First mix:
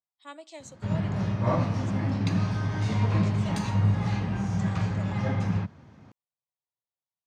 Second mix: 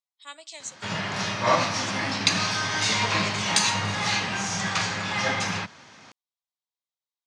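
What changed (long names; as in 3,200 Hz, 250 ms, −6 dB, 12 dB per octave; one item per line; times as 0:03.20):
background +9.0 dB
master: add meter weighting curve ITU-R 468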